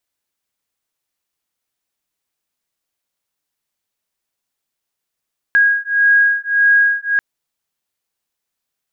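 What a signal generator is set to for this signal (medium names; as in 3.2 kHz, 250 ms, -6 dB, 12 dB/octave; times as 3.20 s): beating tones 1.64 kHz, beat 1.7 Hz, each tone -13.5 dBFS 1.64 s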